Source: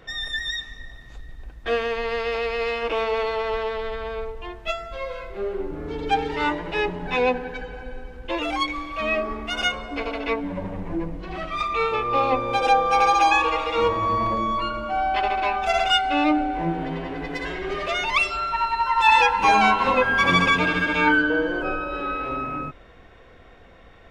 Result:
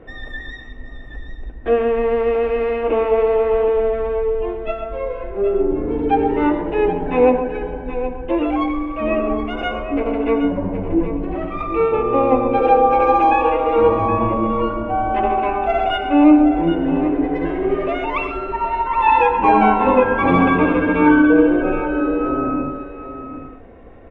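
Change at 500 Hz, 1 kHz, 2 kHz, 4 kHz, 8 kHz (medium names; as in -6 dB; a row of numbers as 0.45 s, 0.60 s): +9.0 dB, +3.5 dB, -3.0 dB, -9.0 dB, under -20 dB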